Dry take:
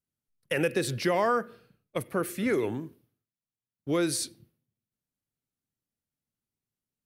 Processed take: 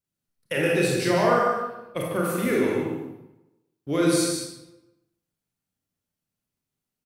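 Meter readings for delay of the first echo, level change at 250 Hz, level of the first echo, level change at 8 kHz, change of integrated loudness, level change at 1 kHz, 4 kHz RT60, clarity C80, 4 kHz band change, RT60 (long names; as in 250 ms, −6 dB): 149 ms, +6.0 dB, −5.5 dB, +4.5 dB, +5.0 dB, +6.0 dB, 0.70 s, 1.0 dB, +5.0 dB, 0.90 s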